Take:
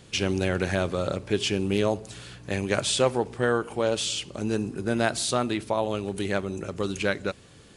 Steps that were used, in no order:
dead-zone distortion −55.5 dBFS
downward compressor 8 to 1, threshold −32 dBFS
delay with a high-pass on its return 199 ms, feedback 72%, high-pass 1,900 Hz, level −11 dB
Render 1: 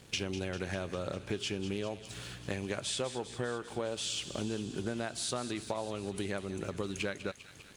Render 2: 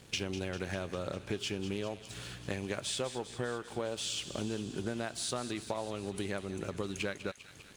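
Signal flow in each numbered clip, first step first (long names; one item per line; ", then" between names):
dead-zone distortion, then downward compressor, then delay with a high-pass on its return
downward compressor, then dead-zone distortion, then delay with a high-pass on its return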